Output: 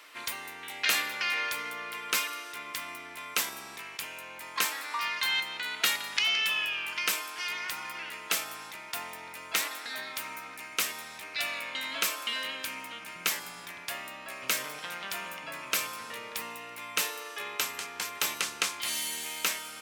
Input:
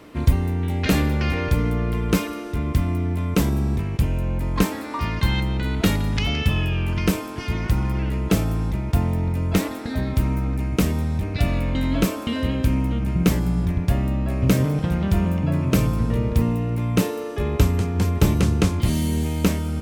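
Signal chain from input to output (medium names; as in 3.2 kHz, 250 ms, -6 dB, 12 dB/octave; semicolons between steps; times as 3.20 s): high-pass 1.5 kHz 12 dB/octave; trim +2.5 dB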